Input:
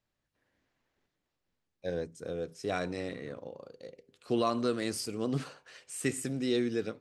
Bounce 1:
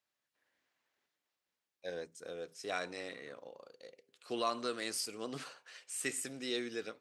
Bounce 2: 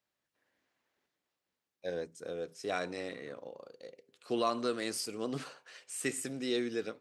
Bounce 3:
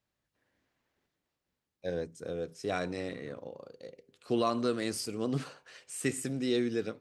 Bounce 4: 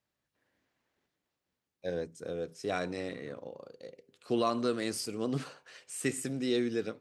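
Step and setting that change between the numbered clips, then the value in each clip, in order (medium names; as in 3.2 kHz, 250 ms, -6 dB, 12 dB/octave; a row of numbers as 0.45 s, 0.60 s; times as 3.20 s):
high-pass, cutoff frequency: 1 kHz, 400 Hz, 40 Hz, 110 Hz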